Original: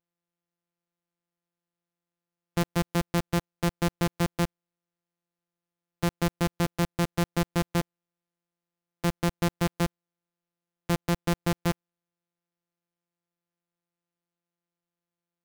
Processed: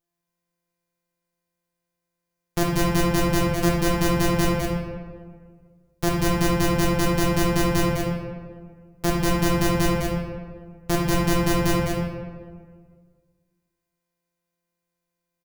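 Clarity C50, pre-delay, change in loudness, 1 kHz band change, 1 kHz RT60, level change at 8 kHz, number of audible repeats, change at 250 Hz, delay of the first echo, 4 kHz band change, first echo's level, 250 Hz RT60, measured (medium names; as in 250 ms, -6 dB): -1.0 dB, 3 ms, +6.5 dB, +7.5 dB, 1.5 s, +9.0 dB, 1, +7.0 dB, 207 ms, +7.0 dB, -5.0 dB, 1.9 s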